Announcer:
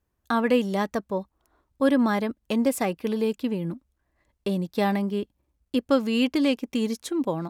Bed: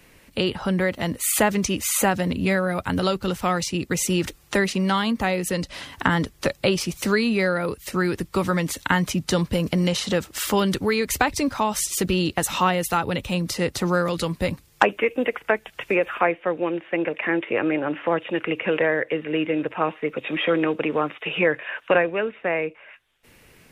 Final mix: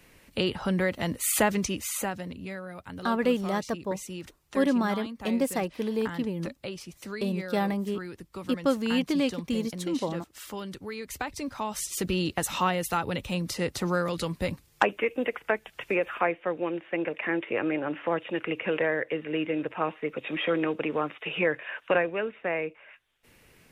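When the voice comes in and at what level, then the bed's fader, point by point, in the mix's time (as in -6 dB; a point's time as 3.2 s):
2.75 s, -3.5 dB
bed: 1.52 s -4 dB
2.48 s -16.5 dB
10.78 s -16.5 dB
12.17 s -5.5 dB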